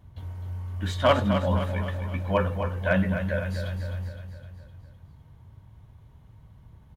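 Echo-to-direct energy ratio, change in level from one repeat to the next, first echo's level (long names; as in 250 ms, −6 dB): −7.0 dB, −5.5 dB, −8.5 dB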